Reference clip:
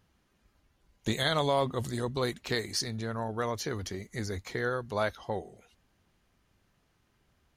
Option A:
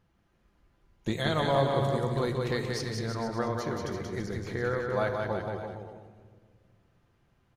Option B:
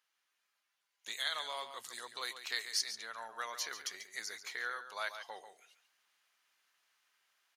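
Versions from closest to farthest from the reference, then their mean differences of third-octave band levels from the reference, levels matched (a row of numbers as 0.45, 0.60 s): A, B; 8.0, 12.5 dB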